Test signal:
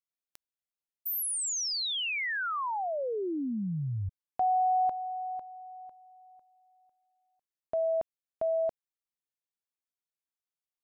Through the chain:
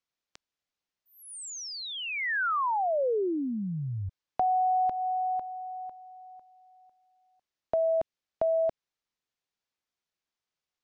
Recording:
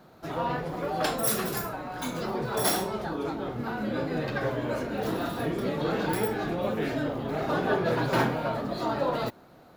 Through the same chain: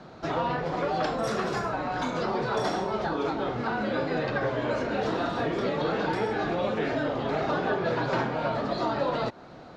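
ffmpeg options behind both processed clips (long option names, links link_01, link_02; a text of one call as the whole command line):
ffmpeg -i in.wav -filter_complex "[0:a]lowpass=frequency=6300:width=0.5412,lowpass=frequency=6300:width=1.3066,acrossover=split=440|1700[link_01][link_02][link_03];[link_01]acompressor=threshold=-42dB:ratio=3[link_04];[link_02]acompressor=threshold=-35dB:ratio=6[link_05];[link_03]acompressor=threshold=-48dB:ratio=5[link_06];[link_04][link_05][link_06]amix=inputs=3:normalize=0,volume=7.5dB" out.wav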